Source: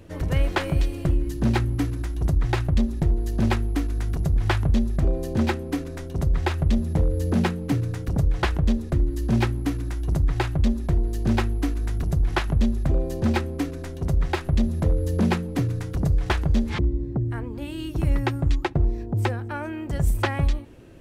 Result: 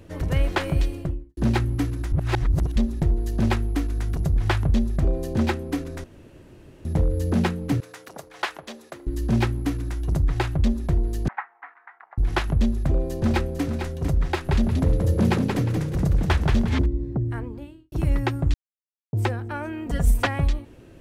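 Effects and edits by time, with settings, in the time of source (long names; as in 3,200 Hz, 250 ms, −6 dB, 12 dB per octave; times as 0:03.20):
0:00.83–0:01.37: fade out and dull
0:02.12–0:02.76: reverse
0:06.04–0:06.85: fill with room tone
0:07.80–0:09.07: high-pass filter 660 Hz
0:11.28–0:12.18: Chebyshev band-pass filter 810–2,000 Hz, order 3
0:12.76–0:13.65: delay throw 450 ms, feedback 15%, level −8 dB
0:14.33–0:16.86: echo with shifted repeats 178 ms, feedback 31%, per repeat +33 Hz, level −4.5 dB
0:17.36–0:17.92: fade out and dull
0:18.54–0:19.13: silence
0:19.86–0:20.27: comb filter 4.2 ms, depth 93%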